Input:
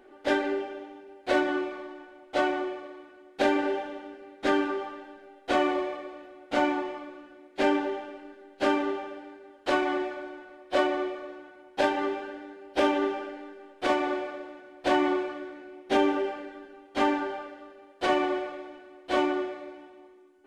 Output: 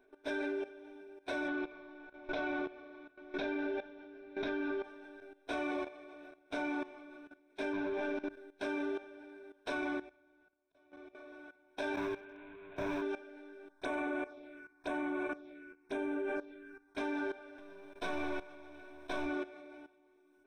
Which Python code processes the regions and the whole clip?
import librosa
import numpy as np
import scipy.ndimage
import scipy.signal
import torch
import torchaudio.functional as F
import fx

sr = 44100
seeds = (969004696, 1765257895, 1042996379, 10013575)

y = fx.chain(x, sr, fx.lowpass(hz=4900.0, slope=24),
    fx.low_shelf(hz=150.0, db=6.0),
    fx.pre_swell(db_per_s=110.0), at=(1.48, 4.84))
y = fx.chain(y, sr, fx.leveller(passes=3),
    fx.air_absorb(metres=130.0), at=(7.73, 8.29))
y = fx.chain(y, sr, fx.peak_eq(hz=84.0, db=12.5, octaves=2.0),
    fx.auto_swell(attack_ms=457.0),
    fx.upward_expand(threshold_db=-36.0, expansion=2.5), at=(9.77, 11.15))
y = fx.chain(y, sr, fx.delta_mod(bps=16000, step_db=-37.0),
    fx.clip_hard(threshold_db=-31.5), at=(11.94, 13.02))
y = fx.chain(y, sr, fx.env_phaser(low_hz=390.0, high_hz=4800.0, full_db=-27.0),
    fx.echo_single(ms=93, db=-14.0),
    fx.sustainer(db_per_s=45.0), at=(13.69, 16.98))
y = fx.chain(y, sr, fx.halfwave_gain(db=-7.0),
    fx.band_squash(depth_pct=40), at=(17.58, 19.26))
y = fx.ripple_eq(y, sr, per_octave=1.6, db=14)
y = fx.level_steps(y, sr, step_db=16)
y = y * librosa.db_to_amplitude(-4.0)